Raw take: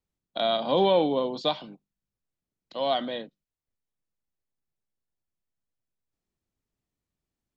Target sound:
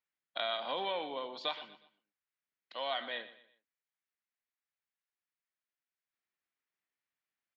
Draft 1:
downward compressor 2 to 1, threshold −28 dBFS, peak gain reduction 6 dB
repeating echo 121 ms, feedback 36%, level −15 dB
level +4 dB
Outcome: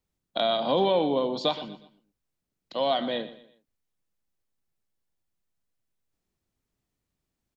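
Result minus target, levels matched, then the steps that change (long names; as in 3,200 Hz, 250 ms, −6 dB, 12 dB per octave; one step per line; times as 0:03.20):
2,000 Hz band −9.5 dB
add after downward compressor: resonant band-pass 1,900 Hz, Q 1.6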